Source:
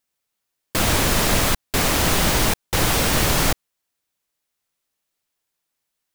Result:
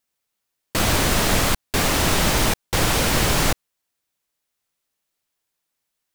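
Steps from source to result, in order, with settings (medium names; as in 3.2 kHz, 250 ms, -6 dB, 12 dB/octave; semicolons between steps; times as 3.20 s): loudspeaker Doppler distortion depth 0.3 ms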